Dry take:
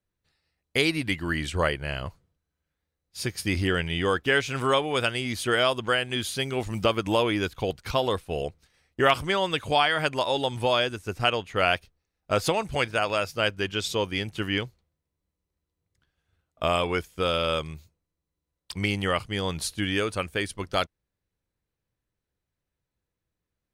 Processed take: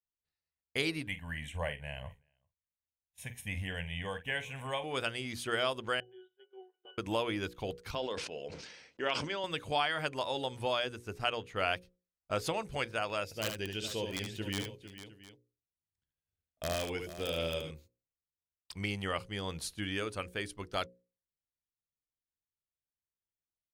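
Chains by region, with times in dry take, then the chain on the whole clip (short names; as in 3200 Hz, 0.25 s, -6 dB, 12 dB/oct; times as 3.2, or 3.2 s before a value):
1.07–4.84 fixed phaser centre 1300 Hz, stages 6 + doubler 47 ms -13 dB + echo 0.386 s -24 dB
6–6.98 brick-wall FIR band-pass 360–3900 Hz + octave resonator F#, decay 0.3 s
7.95–9.44 speaker cabinet 280–6100 Hz, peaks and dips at 360 Hz -4 dB, 730 Hz -7 dB, 1200 Hz -9 dB, 1900 Hz -4 dB, 3800 Hz -5 dB + sustainer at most 43 dB/s
13.24–17.71 bell 1200 Hz -14 dB 0.62 oct + wrapped overs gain 16 dB + tapped delay 72/81/453/709 ms -6/-18.5/-12/-17.5 dB
whole clip: gate -48 dBFS, range -12 dB; notches 60/120/180/240/300/360/420/480/540 Hz; gain -9 dB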